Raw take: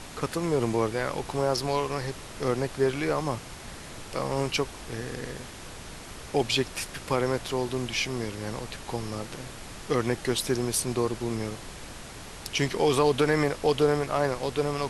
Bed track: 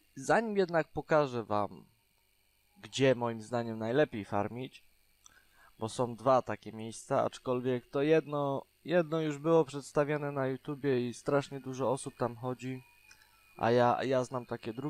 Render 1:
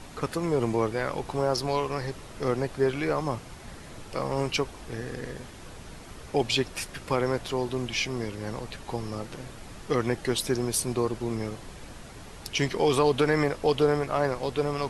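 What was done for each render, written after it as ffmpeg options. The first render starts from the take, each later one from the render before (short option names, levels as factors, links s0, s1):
-af "afftdn=nr=6:nf=-43"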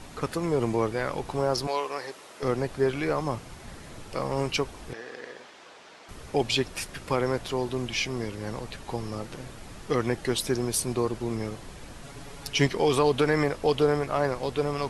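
-filter_complex "[0:a]asettb=1/sr,asplit=3[s0][s1][s2];[s0]atrim=end=1.674[s3];[s1]atrim=start=1.67:end=2.43,asetpts=PTS-STARTPTS,afade=t=in:d=0.004:c=qsin,afade=t=out:st=0.756:d=0.004:c=qsin,highpass=420[s4];[s2]atrim=start=2.426[s5];[s3][s4]acrossfade=d=0.004:c1=hsin:c2=qsin[s6];[s6][s5]acrossfade=d=0.004:c1=qsin:c2=hsin,asettb=1/sr,asplit=3[s7][s8][s9];[s7]atrim=end=4.934[s10];[s8]atrim=start=4.93:end=6.09,asetpts=PTS-STARTPTS,afade=t=in:d=0.004:c=qsin,afade=t=out:st=1.156:d=0.004:c=qsin,highpass=490,lowpass=5300[s11];[s9]atrim=start=6.086[s12];[s10][s11]acrossfade=d=0.004:c1=hsin:c2=qsin[s13];[s13][s12]acrossfade=d=0.004:c1=qsin:c2=hsin,asettb=1/sr,asplit=3[s14][s15][s16];[s14]atrim=end=12.024[s17];[s15]atrim=start=12.02:end=12.67,asetpts=PTS-STARTPTS,afade=t=in:d=0.004:c=qsin,afade=t=out:st=0.646:d=0.004:c=qsin,aecho=1:1:7.1:0.69,atrim=end_sample=28665[s18];[s16]atrim=start=12.666[s19];[s17][s18]acrossfade=d=0.004:c1=hsin:c2=qsin[s20];[s20][s19]acrossfade=d=0.004:c1=qsin:c2=hsin"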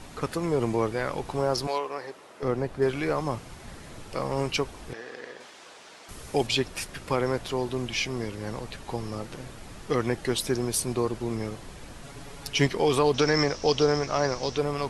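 -filter_complex "[0:a]asettb=1/sr,asplit=3[s0][s1][s2];[s0]atrim=end=1.784[s3];[s1]atrim=start=1.78:end=2.82,asetpts=PTS-STARTPTS,afade=t=in:d=0.004:c=qsin,afade=t=out:st=1.036:d=0.004:c=qsin,highshelf=f=2400:g=-8.5[s4];[s2]atrim=start=2.816[s5];[s3][s4]acrossfade=d=0.004:c1=hsin:c2=qsin[s6];[s6][s5]acrossfade=d=0.004:c1=qsin:c2=hsin,asettb=1/sr,asplit=3[s7][s8][s9];[s7]atrim=end=5.404[s10];[s8]atrim=start=5.4:end=6.47,asetpts=PTS-STARTPTS,afade=t=in:d=0.004:c=qsin,afade=t=out:st=1.066:d=0.004:c=qsin,highshelf=f=6000:g=10[s11];[s9]atrim=start=6.466[s12];[s10][s11]acrossfade=d=0.004:c1=hsin:c2=qsin[s13];[s13][s12]acrossfade=d=0.004:c1=qsin:c2=hsin,asettb=1/sr,asplit=3[s14][s15][s16];[s14]atrim=end=13.144[s17];[s15]atrim=start=13.14:end=14.58,asetpts=PTS-STARTPTS,afade=t=in:d=0.004:c=qsin,afade=t=out:st=1.436:d=0.004:c=qsin,lowpass=f=5700:t=q:w=7.8[s18];[s16]atrim=start=14.576[s19];[s17][s18]acrossfade=d=0.004:c1=hsin:c2=qsin[s20];[s20][s19]acrossfade=d=0.004:c1=qsin:c2=hsin"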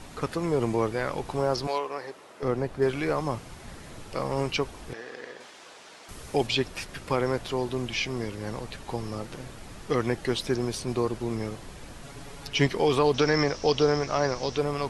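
-filter_complex "[0:a]acrossover=split=5700[s0][s1];[s1]acompressor=threshold=0.00501:ratio=4:attack=1:release=60[s2];[s0][s2]amix=inputs=2:normalize=0"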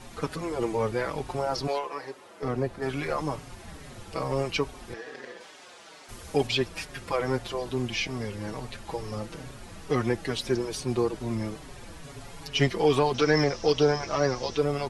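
-filter_complex "[0:a]asplit=2[s0][s1];[s1]aeval=exprs='clip(val(0),-1,0.075)':c=same,volume=0.335[s2];[s0][s2]amix=inputs=2:normalize=0,asplit=2[s3][s4];[s4]adelay=5.1,afreqshift=-2.3[s5];[s3][s5]amix=inputs=2:normalize=1"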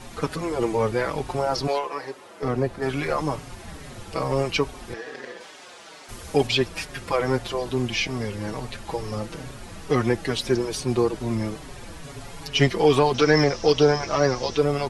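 -af "volume=1.68"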